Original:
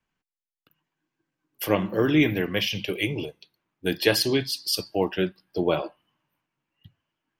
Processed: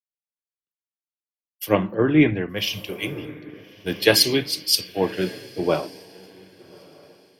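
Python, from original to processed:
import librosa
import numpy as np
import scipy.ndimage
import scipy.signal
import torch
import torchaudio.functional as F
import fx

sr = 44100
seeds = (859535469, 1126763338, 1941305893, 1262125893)

y = fx.lowpass(x, sr, hz=3100.0, slope=12, at=(1.94, 2.58))
y = fx.echo_diffused(y, sr, ms=1193, feedback_pct=51, wet_db=-10)
y = fx.band_widen(y, sr, depth_pct=100)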